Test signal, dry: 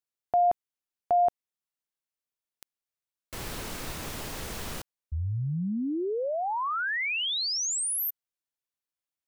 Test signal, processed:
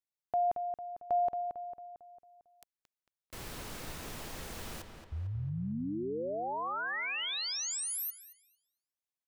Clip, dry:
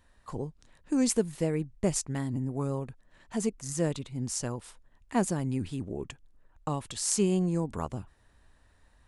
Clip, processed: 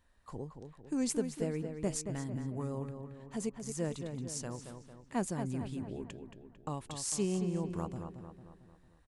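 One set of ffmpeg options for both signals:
-filter_complex "[0:a]asplit=2[s0][s1];[s1]adelay=225,lowpass=f=3300:p=1,volume=0.447,asplit=2[s2][s3];[s3]adelay=225,lowpass=f=3300:p=1,volume=0.51,asplit=2[s4][s5];[s5]adelay=225,lowpass=f=3300:p=1,volume=0.51,asplit=2[s6][s7];[s7]adelay=225,lowpass=f=3300:p=1,volume=0.51,asplit=2[s8][s9];[s9]adelay=225,lowpass=f=3300:p=1,volume=0.51,asplit=2[s10][s11];[s11]adelay=225,lowpass=f=3300:p=1,volume=0.51[s12];[s0][s2][s4][s6][s8][s10][s12]amix=inputs=7:normalize=0,volume=0.447"

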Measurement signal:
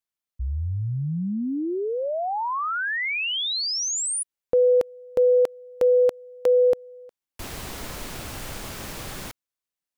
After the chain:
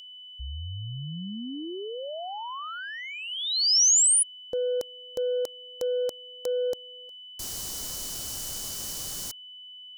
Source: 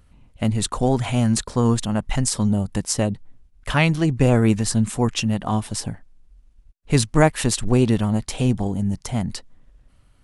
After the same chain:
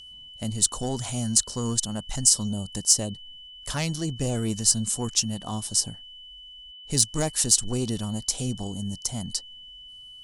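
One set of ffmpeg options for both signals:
-af "acontrast=85,aeval=exprs='val(0)+0.0447*sin(2*PI*3000*n/s)':c=same,highshelf=f=3800:t=q:w=1.5:g=13.5,volume=0.158"

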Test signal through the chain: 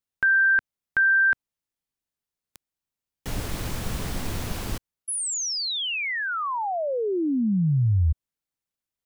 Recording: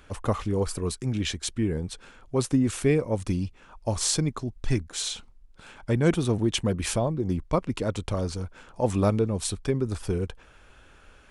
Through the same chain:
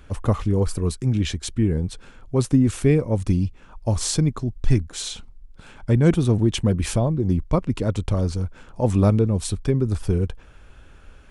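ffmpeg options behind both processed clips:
-af "lowshelf=f=270:g=9.5"

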